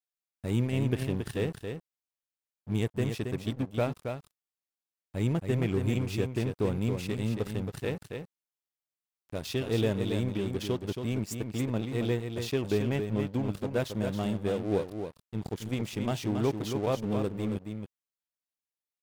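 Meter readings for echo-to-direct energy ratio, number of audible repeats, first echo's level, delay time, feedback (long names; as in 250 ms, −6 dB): −6.5 dB, 1, −6.5 dB, 274 ms, repeats not evenly spaced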